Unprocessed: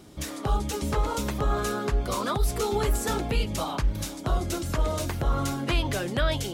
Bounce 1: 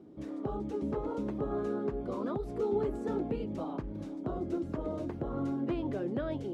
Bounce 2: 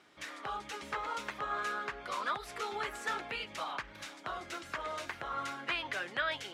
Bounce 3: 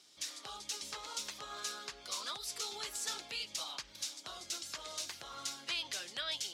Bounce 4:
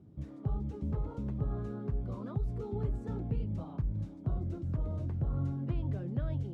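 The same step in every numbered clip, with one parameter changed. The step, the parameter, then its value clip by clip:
band-pass filter, frequency: 310 Hz, 1.8 kHz, 4.9 kHz, 120 Hz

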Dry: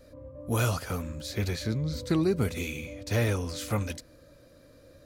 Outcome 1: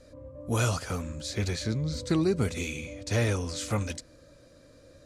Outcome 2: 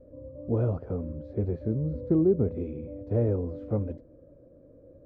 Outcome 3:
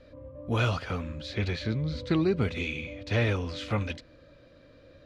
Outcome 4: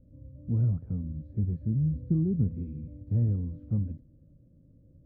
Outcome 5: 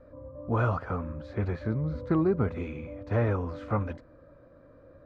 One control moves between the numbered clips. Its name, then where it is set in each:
resonant low-pass, frequency: 8 kHz, 470 Hz, 3.2 kHz, 180 Hz, 1.2 kHz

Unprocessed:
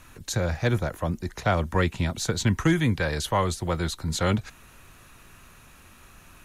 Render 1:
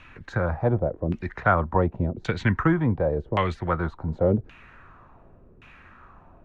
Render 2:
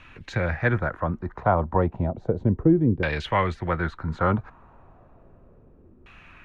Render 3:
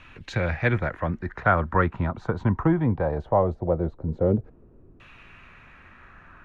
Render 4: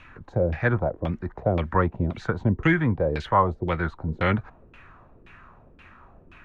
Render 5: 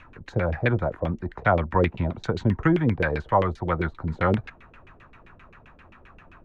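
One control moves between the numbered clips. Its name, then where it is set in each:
LFO low-pass, rate: 0.89 Hz, 0.33 Hz, 0.2 Hz, 1.9 Hz, 7.6 Hz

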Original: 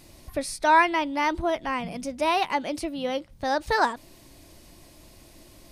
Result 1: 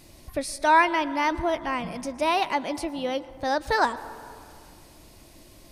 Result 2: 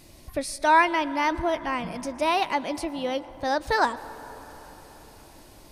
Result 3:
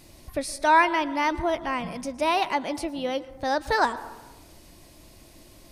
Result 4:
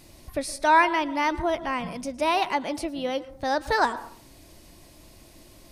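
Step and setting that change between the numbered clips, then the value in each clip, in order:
plate-style reverb, RT60: 2.4 s, 5 s, 1.1 s, 0.51 s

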